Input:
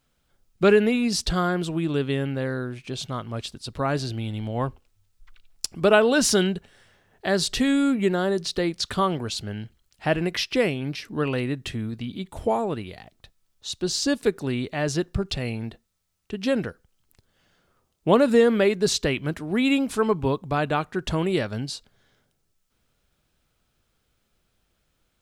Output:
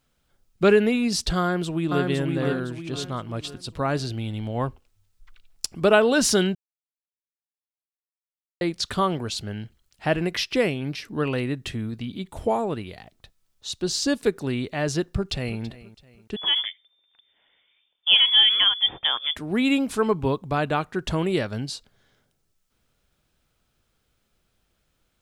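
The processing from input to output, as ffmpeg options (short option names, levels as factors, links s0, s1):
-filter_complex "[0:a]asplit=2[s0][s1];[s1]afade=t=in:st=1.4:d=0.01,afade=t=out:st=2.08:d=0.01,aecho=0:1:510|1020|1530|2040|2550:0.707946|0.283178|0.113271|0.0453085|0.0181234[s2];[s0][s2]amix=inputs=2:normalize=0,asplit=2[s3][s4];[s4]afade=t=in:st=15.05:d=0.01,afade=t=out:st=15.61:d=0.01,aecho=0:1:330|660|990:0.133352|0.0533409|0.0213363[s5];[s3][s5]amix=inputs=2:normalize=0,asettb=1/sr,asplit=3[s6][s7][s8];[s6]atrim=end=16.364[s9];[s7]atrim=start=16.36:end=19.36,asetpts=PTS-STARTPTS,afade=t=in:d=0.004:c=qsin,afade=t=out:st=2.996:d=0.004:c=qsin,lowpass=f=3100:t=q:w=0.5098,lowpass=f=3100:t=q:w=0.6013,lowpass=f=3100:t=q:w=0.9,lowpass=f=3100:t=q:w=2.563,afreqshift=-3600[s10];[s8]atrim=start=19.356[s11];[s9][s10]acrossfade=d=0.004:c1=hsin:c2=qsin[s12];[s12][s11]acrossfade=d=0.004:c1=qsin:c2=hsin,asplit=3[s13][s14][s15];[s13]atrim=end=6.55,asetpts=PTS-STARTPTS,afade=t=out:st=6.546:d=0.004:c=hsin[s16];[s14]atrim=start=6.55:end=8.61,asetpts=PTS-STARTPTS,volume=0[s17];[s15]atrim=start=8.61,asetpts=PTS-STARTPTS,afade=t=in:d=0.004:c=hsin[s18];[s16][s17][s18]concat=n=3:v=0:a=1"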